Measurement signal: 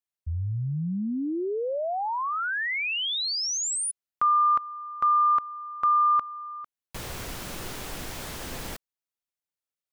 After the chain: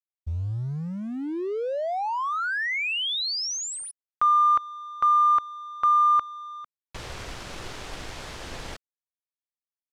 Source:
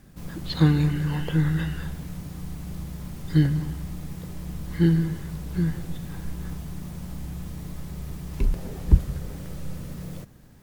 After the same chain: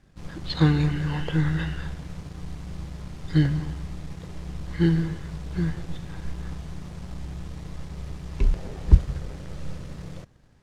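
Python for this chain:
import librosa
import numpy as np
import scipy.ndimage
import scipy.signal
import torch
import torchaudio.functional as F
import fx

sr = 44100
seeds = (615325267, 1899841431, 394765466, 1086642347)

y = fx.law_mismatch(x, sr, coded='A')
y = scipy.signal.sosfilt(scipy.signal.butter(2, 6100.0, 'lowpass', fs=sr, output='sos'), y)
y = fx.peak_eq(y, sr, hz=210.0, db=-5.0, octaves=1.2)
y = y * librosa.db_to_amplitude(2.5)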